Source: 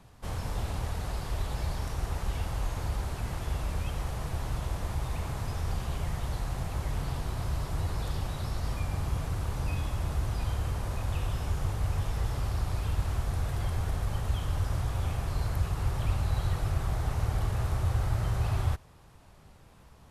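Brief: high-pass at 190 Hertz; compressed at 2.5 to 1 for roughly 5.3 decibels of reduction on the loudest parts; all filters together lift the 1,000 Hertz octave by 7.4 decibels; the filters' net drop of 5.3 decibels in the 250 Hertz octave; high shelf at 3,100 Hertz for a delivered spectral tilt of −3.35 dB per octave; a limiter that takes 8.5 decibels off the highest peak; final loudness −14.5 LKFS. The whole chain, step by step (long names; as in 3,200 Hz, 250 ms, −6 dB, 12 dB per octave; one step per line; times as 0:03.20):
high-pass filter 190 Hz
parametric band 250 Hz −4.5 dB
parametric band 1,000 Hz +8.5 dB
high-shelf EQ 3,100 Hz +8.5 dB
downward compressor 2.5 to 1, threshold −39 dBFS
level +27.5 dB
brickwall limiter −5.5 dBFS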